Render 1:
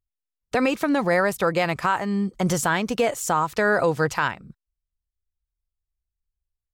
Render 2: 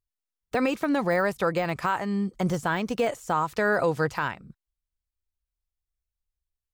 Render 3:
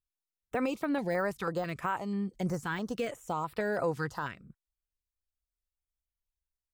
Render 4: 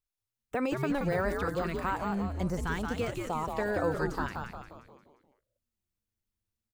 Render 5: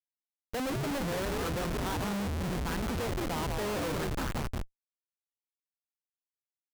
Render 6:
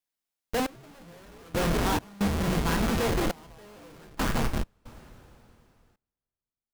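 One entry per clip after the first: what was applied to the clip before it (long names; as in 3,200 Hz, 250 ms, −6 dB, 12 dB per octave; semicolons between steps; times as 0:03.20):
de-essing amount 80%; level −3 dB
notch on a step sequencer 6.1 Hz 610–6,400 Hz; level −6 dB
echo with shifted repeats 176 ms, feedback 50%, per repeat −120 Hz, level −4 dB
comparator with hysteresis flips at −35.5 dBFS; level +1.5 dB
coupled-rooms reverb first 0.36 s, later 3.3 s, from −18 dB, DRR 5 dB; gate pattern "xxx....xx.xx" 68 BPM −24 dB; level +6 dB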